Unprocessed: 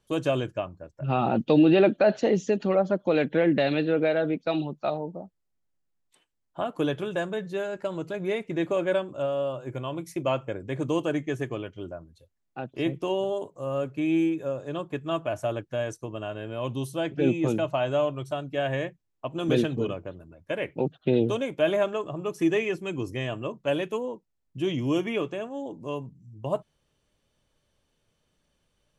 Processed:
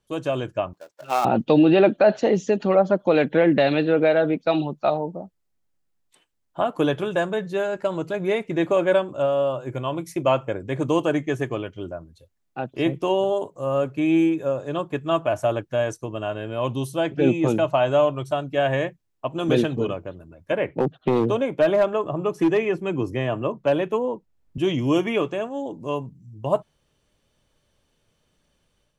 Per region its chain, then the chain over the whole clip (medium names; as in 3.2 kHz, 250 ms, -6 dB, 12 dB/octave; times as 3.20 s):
0.73–1.25 s: dead-time distortion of 0.12 ms + high-pass 590 Hz
20.52–24.58 s: treble shelf 3 kHz -10.5 dB + hard clipper -18 dBFS + three bands compressed up and down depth 40%
whole clip: dynamic bell 890 Hz, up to +4 dB, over -37 dBFS, Q 1; level rider gain up to 7 dB; trim -2.5 dB